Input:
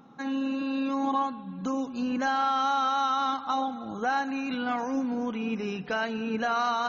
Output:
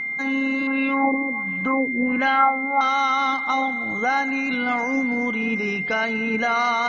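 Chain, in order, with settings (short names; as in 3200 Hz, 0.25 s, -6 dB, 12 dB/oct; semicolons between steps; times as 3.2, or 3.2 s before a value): 0.67–2.81 LFO low-pass sine 1.4 Hz 360–2900 Hz; whine 2100 Hz -30 dBFS; gain +5 dB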